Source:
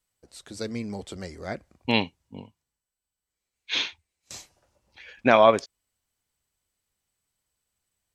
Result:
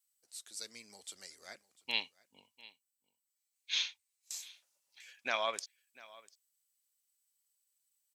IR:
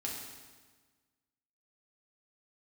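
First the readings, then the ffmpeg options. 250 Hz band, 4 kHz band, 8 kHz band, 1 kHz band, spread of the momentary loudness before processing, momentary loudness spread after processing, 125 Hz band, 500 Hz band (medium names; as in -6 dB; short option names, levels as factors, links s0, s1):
-29.0 dB, -6.0 dB, -0.5 dB, -17.0 dB, 25 LU, 23 LU, under -30 dB, -21.5 dB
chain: -af "aderivative,aecho=1:1:696:0.0891"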